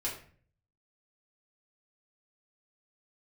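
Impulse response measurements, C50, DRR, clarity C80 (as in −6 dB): 6.5 dB, −5.5 dB, 10.5 dB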